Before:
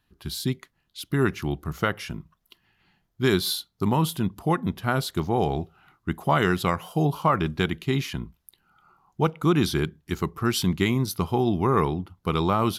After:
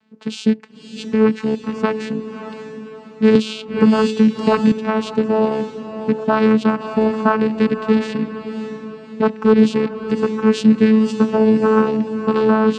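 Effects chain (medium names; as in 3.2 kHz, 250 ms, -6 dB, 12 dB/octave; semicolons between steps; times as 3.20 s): rattle on loud lows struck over -29 dBFS, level -25 dBFS; in parallel at +2.5 dB: compression, threshold -32 dBFS, peak gain reduction 15.5 dB; on the sum: vocoder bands 8, saw 218 Hz; on a send: echo that smears into a reverb 589 ms, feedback 41%, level -10 dB; 3.35–4.72 s: on the sum: three bands compressed up and down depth 100%; trim +7 dB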